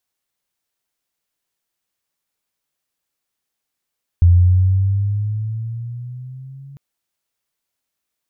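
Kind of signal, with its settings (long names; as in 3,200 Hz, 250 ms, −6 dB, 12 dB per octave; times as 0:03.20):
pitch glide with a swell sine, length 2.55 s, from 86 Hz, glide +8.5 semitones, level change −29 dB, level −6 dB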